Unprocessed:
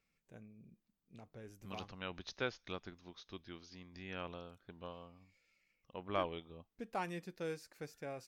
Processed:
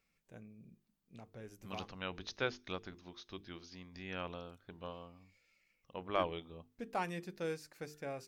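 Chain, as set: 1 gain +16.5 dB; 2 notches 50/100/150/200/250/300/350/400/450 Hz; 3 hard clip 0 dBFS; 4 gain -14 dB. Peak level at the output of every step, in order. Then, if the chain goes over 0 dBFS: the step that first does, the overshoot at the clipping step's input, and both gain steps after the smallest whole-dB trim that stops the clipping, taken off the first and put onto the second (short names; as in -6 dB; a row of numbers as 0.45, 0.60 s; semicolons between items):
-6.0, -6.0, -6.0, -20.0 dBFS; no overload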